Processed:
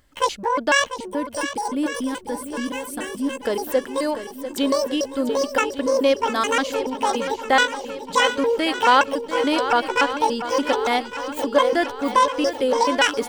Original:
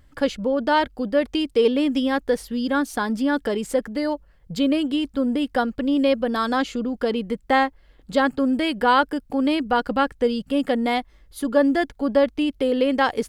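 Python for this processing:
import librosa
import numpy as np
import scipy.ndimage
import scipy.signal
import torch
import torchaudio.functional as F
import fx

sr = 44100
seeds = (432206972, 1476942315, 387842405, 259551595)

p1 = fx.pitch_trill(x, sr, semitones=10.5, every_ms=143)
p2 = fx.bass_treble(p1, sr, bass_db=-9, treble_db=4)
p3 = fx.backlash(p2, sr, play_db=-24.5)
p4 = p2 + F.gain(torch.from_numpy(p3), -11.0).numpy()
p5 = fx.spec_box(p4, sr, start_s=0.97, length_s=2.46, low_hz=380.0, high_hz=7500.0, gain_db=-11)
y = p5 + fx.echo_swing(p5, sr, ms=1157, ratio=1.5, feedback_pct=52, wet_db=-11.0, dry=0)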